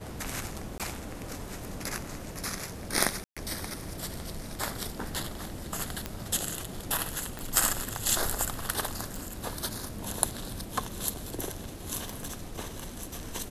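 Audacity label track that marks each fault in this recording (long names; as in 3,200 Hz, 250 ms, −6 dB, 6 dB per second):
0.780000	0.800000	drop-out 17 ms
3.240000	3.370000	drop-out 126 ms
6.060000	6.060000	click −16 dBFS
7.390000	7.390000	click
9.160000	9.160000	click
12.090000	12.430000	clipping −28.5 dBFS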